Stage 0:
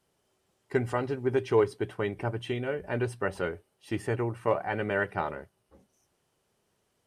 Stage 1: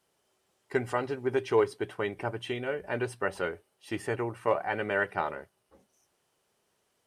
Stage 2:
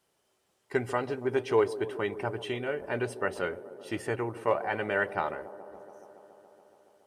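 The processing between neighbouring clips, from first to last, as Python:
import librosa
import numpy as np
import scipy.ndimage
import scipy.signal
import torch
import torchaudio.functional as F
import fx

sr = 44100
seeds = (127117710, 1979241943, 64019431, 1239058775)

y1 = fx.low_shelf(x, sr, hz=260.0, db=-9.5)
y1 = F.gain(torch.from_numpy(y1), 1.5).numpy()
y2 = fx.echo_wet_bandpass(y1, sr, ms=141, feedback_pct=81, hz=420.0, wet_db=-14)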